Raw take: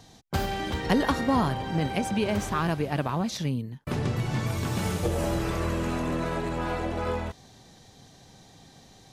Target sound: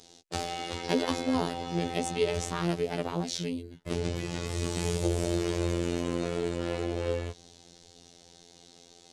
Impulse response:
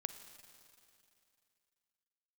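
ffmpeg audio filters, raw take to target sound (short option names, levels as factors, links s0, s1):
-filter_complex "[0:a]lowpass=f=9700:w=0.5412,lowpass=f=9700:w=1.3066,tiltshelf=f=1400:g=-9.5,acrossover=split=190|1100[s0][s1][s2];[s0]dynaudnorm=f=290:g=11:m=2.99[s3];[s1]equalizer=f=390:w=0.98:g=14[s4];[s2]aeval=exprs='val(0)*sin(2*PI*270*n/s)':c=same[s5];[s3][s4][s5]amix=inputs=3:normalize=0,afftfilt=real='hypot(re,im)*cos(PI*b)':imag='0':win_size=2048:overlap=0.75"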